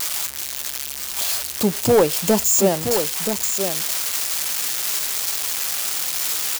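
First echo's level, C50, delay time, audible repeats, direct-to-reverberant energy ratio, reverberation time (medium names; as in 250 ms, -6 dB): -7.5 dB, no reverb, 977 ms, 1, no reverb, no reverb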